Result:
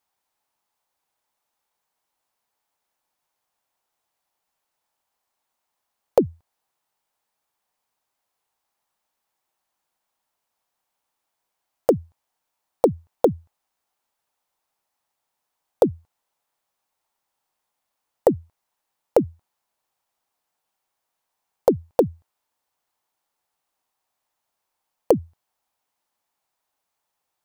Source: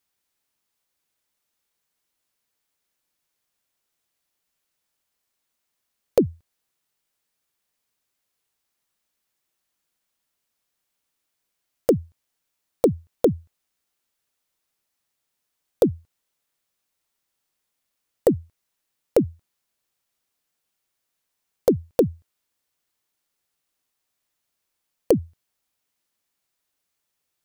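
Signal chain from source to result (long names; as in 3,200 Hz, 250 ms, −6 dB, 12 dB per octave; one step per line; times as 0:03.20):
parametric band 850 Hz +13 dB 1.1 octaves
level −3 dB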